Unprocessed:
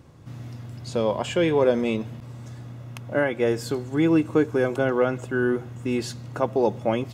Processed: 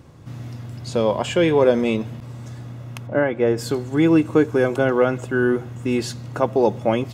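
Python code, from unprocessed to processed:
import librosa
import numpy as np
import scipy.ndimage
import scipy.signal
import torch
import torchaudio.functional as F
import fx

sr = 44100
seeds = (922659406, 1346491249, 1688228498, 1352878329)

y = fx.lowpass(x, sr, hz=1600.0, slope=6, at=(3.06, 3.57), fade=0.02)
y = y * 10.0 ** (4.0 / 20.0)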